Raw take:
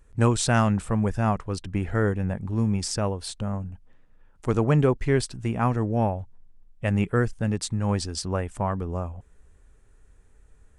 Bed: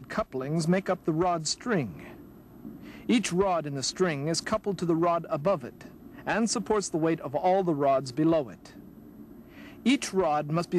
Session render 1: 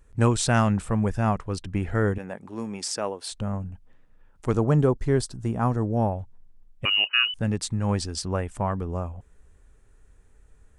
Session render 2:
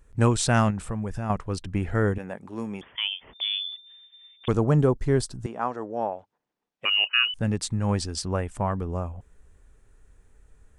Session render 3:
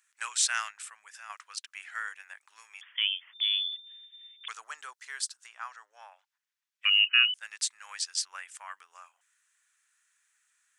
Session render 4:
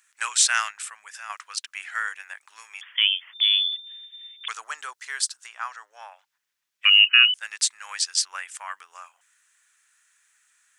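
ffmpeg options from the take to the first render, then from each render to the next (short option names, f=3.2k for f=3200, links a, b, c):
-filter_complex "[0:a]asettb=1/sr,asplit=3[a][b][c];[a]atrim=end=2.184[d];[b]atrim=start=2.18:end=3.32,asetpts=PTS-STARTPTS,afade=t=in:d=0.004:c=qsin,afade=t=out:st=1.136:d=0.004:c=qsin,highpass=330[e];[c]atrim=start=3.316[f];[d][e]acrossfade=d=0.004:c1=hsin:c2=qsin[g];[g][f]acrossfade=d=0.004:c1=qsin:c2=hsin,asettb=1/sr,asplit=3[h][i][j];[h]atrim=end=4.564[k];[i]atrim=start=4.56:end=6.12,asetpts=PTS-STARTPTS,afade=t=in:d=0.004:c=qsin,afade=t=out:st=1.556:d=0.004:c=qsin,equalizer=f=2.4k:t=o:w=0.91:g=-10.5[l];[j]atrim=start=6.116[m];[k][l]acrossfade=d=0.004:c1=hsin:c2=qsin[n];[n][m]acrossfade=d=0.004:c1=qsin:c2=hsin,asettb=1/sr,asplit=3[o][p][q];[o]atrim=end=6.854[r];[p]atrim=start=6.85:end=7.34,asetpts=PTS-STARTPTS,afade=t=in:d=0.004:c=qsin,afade=t=out:st=0.486:d=0.004:c=qsin,lowpass=f=2.6k:t=q:w=0.5098,lowpass=f=2.6k:t=q:w=0.6013,lowpass=f=2.6k:t=q:w=0.9,lowpass=f=2.6k:t=q:w=2.563,afreqshift=-3000[s];[q]atrim=start=7.336[t];[r][s]acrossfade=d=0.004:c1=hsin:c2=qsin[u];[u][t]acrossfade=d=0.004:c1=qsin:c2=hsin"
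-filter_complex "[0:a]asettb=1/sr,asplit=3[a][b][c];[a]atrim=end=0.704[d];[b]atrim=start=0.7:end=1.3,asetpts=PTS-STARTPTS,afade=t=in:d=0.004:c=qsin,afade=t=out:st=0.596:d=0.004:c=qsin,acompressor=threshold=-26dB:ratio=4:attack=3.2:release=140:knee=1:detection=peak[e];[c]atrim=start=1.296[f];[d][e]acrossfade=d=0.004:c1=hsin:c2=qsin[g];[g][f]acrossfade=d=0.004:c1=qsin:c2=hsin,asettb=1/sr,asplit=3[h][i][j];[h]atrim=end=2.814[k];[i]atrim=start=2.81:end=4.48,asetpts=PTS-STARTPTS,afade=t=in:d=0.004:c=qsin,afade=t=out:st=1.666:d=0.004:c=qsin,lowpass=f=3.1k:t=q:w=0.5098,lowpass=f=3.1k:t=q:w=0.6013,lowpass=f=3.1k:t=q:w=0.9,lowpass=f=3.1k:t=q:w=2.563,afreqshift=-3600[l];[j]atrim=start=4.476[m];[k][l]acrossfade=d=0.004:c1=hsin:c2=qsin[n];[n][m]acrossfade=d=0.004:c1=qsin:c2=hsin,asettb=1/sr,asplit=3[o][p][q];[o]atrim=end=5.464[r];[p]atrim=start=5.46:end=7.26,asetpts=PTS-STARTPTS,afade=t=in:d=0.004:c=qsin,afade=t=out:st=1.796:d=0.004:c=qsin,highpass=430,lowpass=5.3k[s];[q]atrim=start=7.256[t];[r][s]acrossfade=d=0.004:c1=hsin:c2=qsin[u];[u][t]acrossfade=d=0.004:c1=qsin:c2=hsin"
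-af "highpass=f=1.5k:w=0.5412,highpass=f=1.5k:w=1.3066,equalizer=f=6.5k:t=o:w=0.75:g=3.5"
-af "volume=8dB,alimiter=limit=-3dB:level=0:latency=1"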